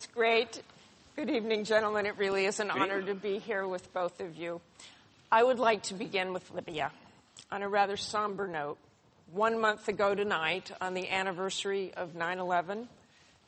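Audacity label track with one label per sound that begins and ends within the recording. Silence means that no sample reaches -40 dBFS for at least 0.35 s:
1.180000	4.850000	sound
5.320000	6.900000	sound
7.370000	8.730000	sound
9.340000	12.840000	sound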